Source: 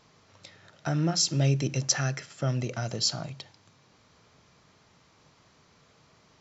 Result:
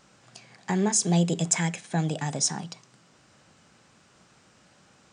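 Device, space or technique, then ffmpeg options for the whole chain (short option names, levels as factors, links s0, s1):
nightcore: -af "asetrate=55125,aresample=44100,volume=1.26"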